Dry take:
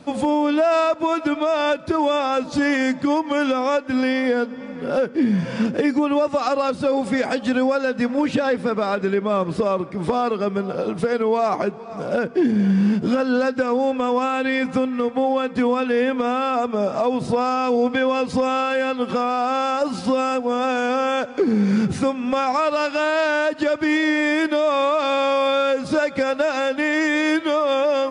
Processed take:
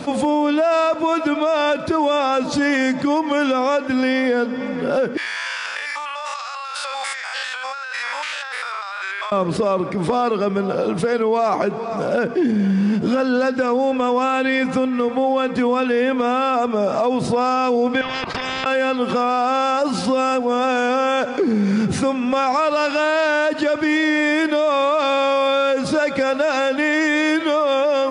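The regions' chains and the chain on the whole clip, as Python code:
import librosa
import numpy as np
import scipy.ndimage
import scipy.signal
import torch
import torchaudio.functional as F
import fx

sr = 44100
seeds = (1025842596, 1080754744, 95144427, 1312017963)

y = fx.chain(x, sr, fx.spec_steps(hold_ms=100),
    fx.highpass(hz=1100.0, slope=24),
    fx.over_compress(threshold_db=-40.0, ratio=-1.0), at=(5.17, 9.32))
y = fx.chain(y, sr, fx.lowpass(hz=1400.0, slope=12),
    fx.level_steps(step_db=23),
    fx.spectral_comp(ratio=10.0), at=(18.01, 18.66))
y = fx.low_shelf(y, sr, hz=150.0, db=-5.0)
y = fx.env_flatten(y, sr, amount_pct=50)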